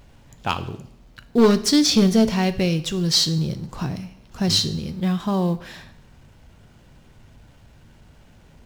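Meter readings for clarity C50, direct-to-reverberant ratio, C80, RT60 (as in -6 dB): 15.0 dB, 11.5 dB, 18.5 dB, 0.70 s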